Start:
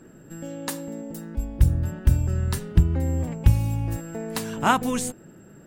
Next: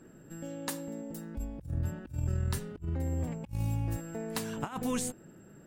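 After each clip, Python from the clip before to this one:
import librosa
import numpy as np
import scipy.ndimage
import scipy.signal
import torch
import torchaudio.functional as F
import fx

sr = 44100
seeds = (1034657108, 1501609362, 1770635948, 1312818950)

y = fx.over_compress(x, sr, threshold_db=-24.0, ratio=-0.5)
y = y * librosa.db_to_amplitude(-8.5)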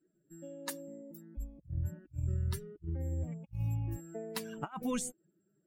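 y = fx.bin_expand(x, sr, power=2.0)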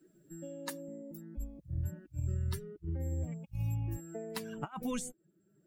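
y = fx.band_squash(x, sr, depth_pct=40)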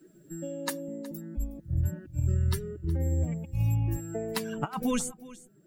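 y = x + 10.0 ** (-19.0 / 20.0) * np.pad(x, (int(367 * sr / 1000.0), 0))[:len(x)]
y = y * librosa.db_to_amplitude(8.0)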